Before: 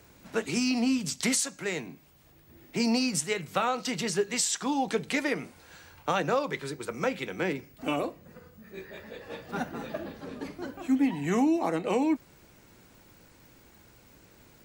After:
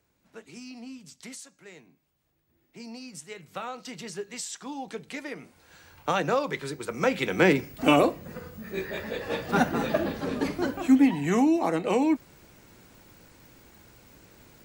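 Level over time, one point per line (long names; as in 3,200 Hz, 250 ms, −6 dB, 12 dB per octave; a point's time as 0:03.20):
0:02.96 −16 dB
0:03.58 −8.5 dB
0:05.30 −8.5 dB
0:06.09 +1.5 dB
0:06.88 +1.5 dB
0:07.44 +10 dB
0:10.62 +10 dB
0:11.29 +2.5 dB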